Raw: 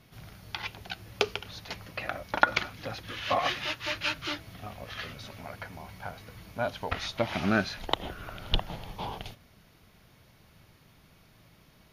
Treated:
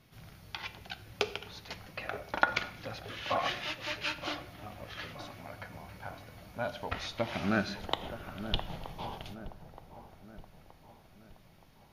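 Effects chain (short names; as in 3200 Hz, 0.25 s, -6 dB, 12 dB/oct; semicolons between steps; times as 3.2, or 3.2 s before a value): dark delay 0.923 s, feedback 49%, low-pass 1000 Hz, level -10.5 dB; on a send at -11.5 dB: reverb RT60 0.80 s, pre-delay 4 ms; on the sum: gain -4.5 dB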